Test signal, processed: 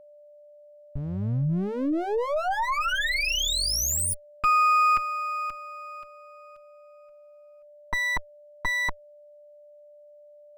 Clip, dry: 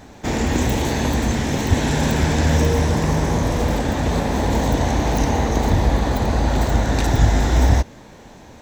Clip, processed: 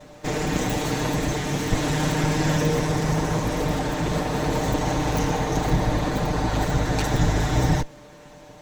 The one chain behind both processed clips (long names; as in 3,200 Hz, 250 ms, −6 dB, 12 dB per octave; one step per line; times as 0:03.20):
lower of the sound and its delayed copy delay 6.6 ms
steady tone 590 Hz −46 dBFS
level −2.5 dB